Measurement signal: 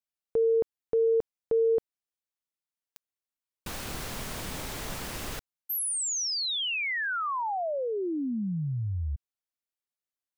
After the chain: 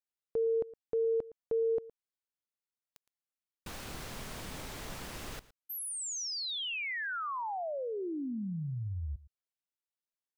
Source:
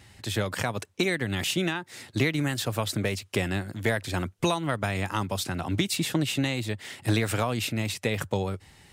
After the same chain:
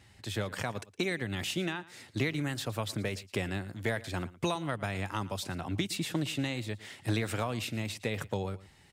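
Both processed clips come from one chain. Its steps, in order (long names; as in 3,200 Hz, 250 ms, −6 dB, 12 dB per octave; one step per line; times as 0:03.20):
high-shelf EQ 9,000 Hz −4.5 dB
single-tap delay 114 ms −19 dB
level −6 dB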